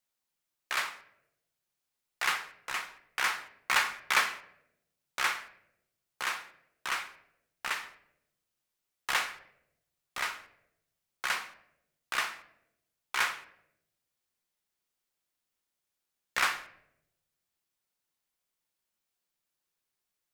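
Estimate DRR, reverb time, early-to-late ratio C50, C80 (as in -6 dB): 8.5 dB, 0.85 s, 14.5 dB, 17.5 dB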